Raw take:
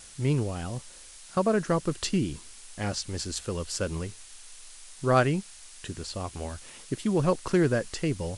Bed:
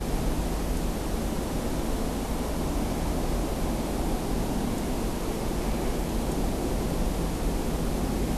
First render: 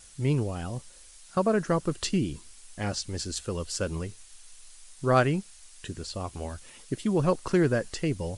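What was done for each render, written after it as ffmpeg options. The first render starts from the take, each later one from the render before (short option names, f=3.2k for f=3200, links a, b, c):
-af "afftdn=nr=6:nf=-49"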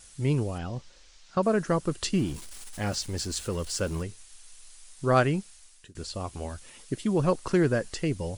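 -filter_complex "[0:a]asettb=1/sr,asplit=3[a][b][c];[a]atrim=end=0.584[d];[b]atrim=start=0.58:end=1.43,asetpts=PTS-STARTPTS,afade=t=in:d=0.004:c=qsin,afade=t=out:st=0.846:d=0.004:c=qsin,lowpass=f=5.9k:w=0.5412,lowpass=f=5.9k:w=1.3066[e];[c]atrim=start=1.426[f];[d][e]acrossfade=d=0.004:c1=hsin:c2=qsin[g];[g][f]acrossfade=d=0.004:c1=qsin:c2=hsin,asettb=1/sr,asplit=3[h][i][j];[h]atrim=end=2.144[k];[i]atrim=start=2.14:end=4.03,asetpts=PTS-STARTPTS,afade=t=in:d=0.004:c=qsin,afade=t=out:st=1.886:d=0.004:c=qsin,aeval=exprs='val(0)+0.5*0.00944*sgn(val(0))':c=same[l];[j]atrim=start=4.026[m];[k][l]acrossfade=d=0.004:c1=hsin:c2=qsin[n];[n][m]acrossfade=d=0.004:c1=qsin:c2=hsin,asplit=2[o][p];[o]atrim=end=5.95,asetpts=PTS-STARTPTS,afade=t=out:st=5.34:d=0.61:c=qsin:silence=0.0630957[q];[p]atrim=start=5.95,asetpts=PTS-STARTPTS,afade=t=in:d=0.004:c=hsin:silence=0.0630957[r];[q][r]concat=n=2:v=0:a=1"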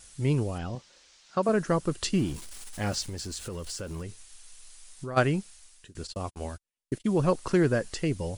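-filter_complex "[0:a]asettb=1/sr,asplit=3[a][b][c];[a]atrim=end=0.754[d];[b]atrim=start=0.75:end=1.49,asetpts=PTS-STARTPTS,afade=t=in:d=0.004:c=qsin,afade=t=out:st=0.736:d=0.004:c=qsin,highpass=f=220:p=1[e];[c]atrim=start=1.486[f];[d][e]acrossfade=d=0.004:c1=hsin:c2=qsin[g];[g][f]acrossfade=d=0.004:c1=qsin:c2=hsin,asplit=3[h][i][j];[h]afade=t=out:st=3.08:d=0.02[k];[i]acompressor=threshold=-33dB:ratio=6:attack=3.2:release=140:knee=1:detection=peak,afade=t=in:st=3.08:d=0.02,afade=t=out:st=5.16:d=0.02[l];[j]afade=t=in:st=5.16:d=0.02[m];[k][l][m]amix=inputs=3:normalize=0,asplit=3[n][o][p];[n]afade=t=out:st=6.06:d=0.02[q];[o]agate=range=-45dB:threshold=-38dB:ratio=16:release=100:detection=peak,afade=t=in:st=6.06:d=0.02,afade=t=out:st=7.04:d=0.02[r];[p]afade=t=in:st=7.04:d=0.02[s];[q][r][s]amix=inputs=3:normalize=0"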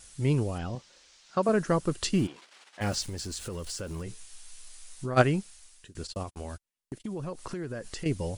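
-filter_complex "[0:a]asplit=3[a][b][c];[a]afade=t=out:st=2.26:d=0.02[d];[b]highpass=510,lowpass=3.2k,afade=t=in:st=2.26:d=0.02,afade=t=out:st=2.8:d=0.02[e];[c]afade=t=in:st=2.8:d=0.02[f];[d][e][f]amix=inputs=3:normalize=0,asettb=1/sr,asplit=3[g][h][i];[g]atrim=end=4.054[j];[h]atrim=start=4.05:end=5.22,asetpts=PTS-STARTPTS,afade=t=in:d=0.004:c=qsin,afade=t=out:st=1.166:d=0.004:c=qsin,asplit=2[k][l];[l]adelay=16,volume=-3.5dB[m];[k][m]amix=inputs=2:normalize=0,atrim=end_sample=51597[n];[i]atrim=start=5.216[o];[j][n]acrossfade=d=0.004:c1=hsin:c2=qsin[p];[p][o]acrossfade=d=0.004:c1=qsin:c2=hsin,asettb=1/sr,asplit=3[q][r][s];[q]atrim=end=6.234[t];[r]atrim=start=6.23:end=8.06,asetpts=PTS-STARTPTS,afade=t=in:d=0.004:c=qsin,afade=t=out:st=1.826:d=0.004:c=qsin,acompressor=threshold=-33dB:ratio=6:attack=3.2:release=140:knee=1:detection=peak[u];[s]atrim=start=8.056[v];[t][u]acrossfade=d=0.004:c1=hsin:c2=qsin[w];[w][v]acrossfade=d=0.004:c1=qsin:c2=hsin"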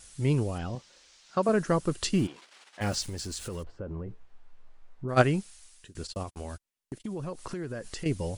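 -filter_complex "[0:a]asplit=3[a][b][c];[a]afade=t=out:st=3.62:d=0.02[d];[b]lowpass=1k,afade=t=in:st=3.62:d=0.02,afade=t=out:st=5.08:d=0.02[e];[c]afade=t=in:st=5.08:d=0.02[f];[d][e][f]amix=inputs=3:normalize=0"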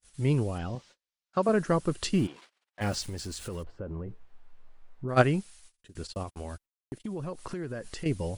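-af "equalizer=f=6.6k:t=o:w=1.2:g=-3.5,agate=range=-36dB:threshold=-52dB:ratio=16:detection=peak"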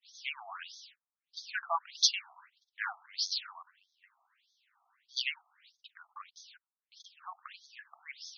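-af "crystalizer=i=5:c=0,afftfilt=real='re*between(b*sr/1024,910*pow(4700/910,0.5+0.5*sin(2*PI*1.6*pts/sr))/1.41,910*pow(4700/910,0.5+0.5*sin(2*PI*1.6*pts/sr))*1.41)':imag='im*between(b*sr/1024,910*pow(4700/910,0.5+0.5*sin(2*PI*1.6*pts/sr))/1.41,910*pow(4700/910,0.5+0.5*sin(2*PI*1.6*pts/sr))*1.41)':win_size=1024:overlap=0.75"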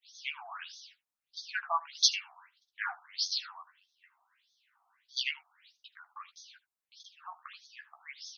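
-filter_complex "[0:a]asplit=2[a][b];[b]adelay=14,volume=-6.5dB[c];[a][c]amix=inputs=2:normalize=0,aecho=1:1:77:0.0841"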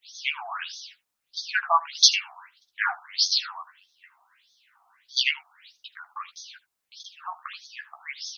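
-af "volume=10dB,alimiter=limit=-2dB:level=0:latency=1"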